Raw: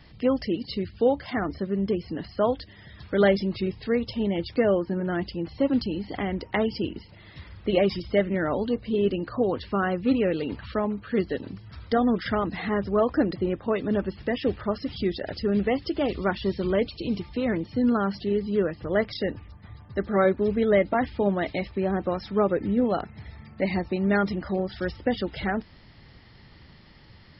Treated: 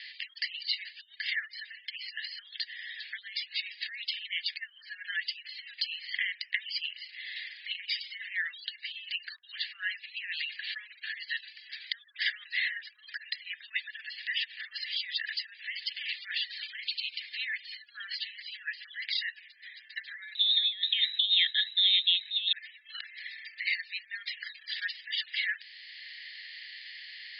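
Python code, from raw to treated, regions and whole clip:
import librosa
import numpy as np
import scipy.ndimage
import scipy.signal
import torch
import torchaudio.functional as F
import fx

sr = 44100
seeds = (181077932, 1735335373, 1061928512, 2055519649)

y = fx.chain(x, sr, fx.freq_invert(carrier_hz=3900),
    fx.band_widen(depth_pct=100), at=(20.35, 22.53))
y = fx.over_compress(y, sr, threshold_db=-26.0, ratio=-0.5)
y = scipy.signal.sosfilt(scipy.signal.cheby1(5, 1.0, [1700.0, 4800.0], 'bandpass', fs=sr, output='sos'), y)
y = fx.band_squash(y, sr, depth_pct=40)
y = F.gain(torch.from_numpy(y), 5.5).numpy()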